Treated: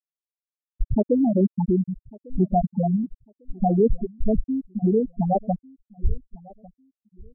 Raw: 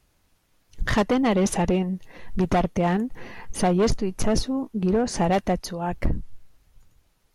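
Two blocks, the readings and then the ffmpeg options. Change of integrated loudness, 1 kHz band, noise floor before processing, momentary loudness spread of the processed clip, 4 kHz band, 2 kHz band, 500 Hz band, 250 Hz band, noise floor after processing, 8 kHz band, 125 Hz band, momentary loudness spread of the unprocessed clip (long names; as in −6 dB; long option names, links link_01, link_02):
+0.5 dB, −2.0 dB, −66 dBFS, 11 LU, below −40 dB, below −40 dB, −0.5 dB, +1.0 dB, below −85 dBFS, below −40 dB, +1.0 dB, 12 LU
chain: -filter_complex "[0:a]afftfilt=real='re*gte(hypot(re,im),0.631)':imag='im*gte(hypot(re,im),0.631)':win_size=1024:overlap=0.75,asplit=2[link_01][link_02];[link_02]adelay=1149,lowpass=frequency=2000:poles=1,volume=-23dB,asplit=2[link_03][link_04];[link_04]adelay=1149,lowpass=frequency=2000:poles=1,volume=0.26[link_05];[link_01][link_03][link_05]amix=inputs=3:normalize=0,volume=3.5dB"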